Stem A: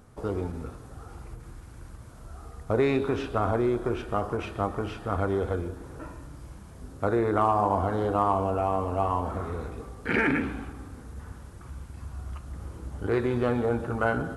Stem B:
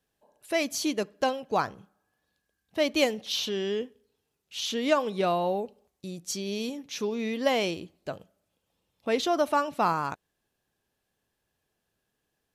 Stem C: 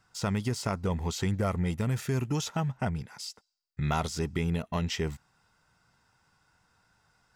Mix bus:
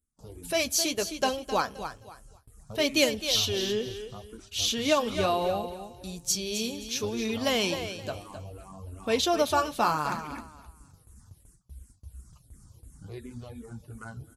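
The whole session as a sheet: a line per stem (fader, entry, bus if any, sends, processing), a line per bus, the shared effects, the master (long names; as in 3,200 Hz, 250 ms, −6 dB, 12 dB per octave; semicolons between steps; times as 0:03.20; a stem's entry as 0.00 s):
−14.0 dB, 0.00 s, no send, echo send −23 dB, reverb reduction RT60 0.76 s; bass and treble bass +14 dB, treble +15 dB; frequency shifter mixed with the dry sound −2.8 Hz
+2.5 dB, 0.00 s, no send, echo send −10 dB, notch filter 2,000 Hz, Q 14; noise gate with hold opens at −56 dBFS
muted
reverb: not used
echo: repeating echo 262 ms, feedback 25%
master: noise gate with hold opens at −40 dBFS; high-shelf EQ 3,100 Hz +10 dB; flanger 0.67 Hz, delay 2.7 ms, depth 6.9 ms, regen −41%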